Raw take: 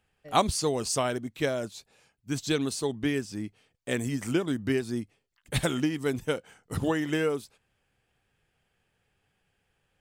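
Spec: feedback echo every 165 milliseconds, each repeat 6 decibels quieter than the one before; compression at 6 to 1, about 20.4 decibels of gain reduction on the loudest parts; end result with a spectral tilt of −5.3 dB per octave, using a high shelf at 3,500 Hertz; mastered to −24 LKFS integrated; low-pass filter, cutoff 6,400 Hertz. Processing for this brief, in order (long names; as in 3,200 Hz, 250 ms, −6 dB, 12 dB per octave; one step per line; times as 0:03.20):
low-pass filter 6,400 Hz
high-shelf EQ 3,500 Hz −4 dB
downward compressor 6 to 1, threshold −41 dBFS
repeating echo 165 ms, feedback 50%, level −6 dB
level +20 dB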